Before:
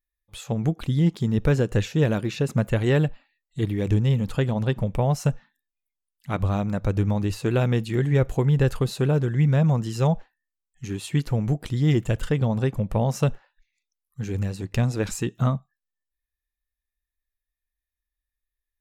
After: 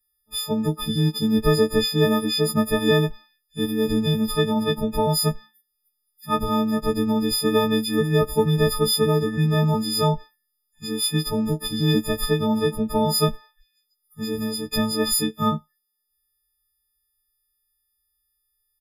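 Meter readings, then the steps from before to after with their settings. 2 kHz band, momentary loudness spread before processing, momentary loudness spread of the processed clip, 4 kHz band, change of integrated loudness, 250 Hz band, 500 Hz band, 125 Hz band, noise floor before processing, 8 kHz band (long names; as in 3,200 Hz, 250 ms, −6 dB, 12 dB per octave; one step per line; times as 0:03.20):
+3.0 dB, 8 LU, 7 LU, +13.5 dB, +2.0 dB, +3.5 dB, +4.5 dB, −4.0 dB, below −85 dBFS, +11.0 dB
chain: every partial snapped to a pitch grid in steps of 6 semitones
comb filter 4.2 ms, depth 93%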